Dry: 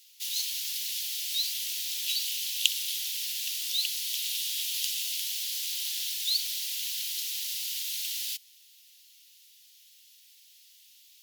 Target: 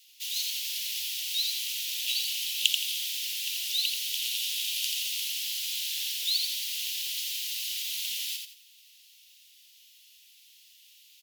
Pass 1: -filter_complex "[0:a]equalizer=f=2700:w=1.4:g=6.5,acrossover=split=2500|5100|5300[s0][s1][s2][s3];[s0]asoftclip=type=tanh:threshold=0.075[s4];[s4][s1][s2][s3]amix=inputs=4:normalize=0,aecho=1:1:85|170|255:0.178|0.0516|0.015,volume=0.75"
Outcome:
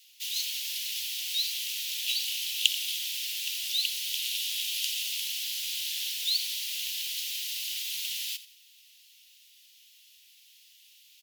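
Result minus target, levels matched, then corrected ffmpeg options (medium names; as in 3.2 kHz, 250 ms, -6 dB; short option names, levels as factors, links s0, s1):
echo-to-direct -10 dB; 1 kHz band +2.5 dB
-filter_complex "[0:a]highpass=f=1400:p=1,equalizer=f=2700:w=1.4:g=6.5,acrossover=split=2500|5100|5300[s0][s1][s2][s3];[s0]asoftclip=type=tanh:threshold=0.075[s4];[s4][s1][s2][s3]amix=inputs=4:normalize=0,aecho=1:1:85|170|255|340:0.562|0.163|0.0473|0.0137,volume=0.75"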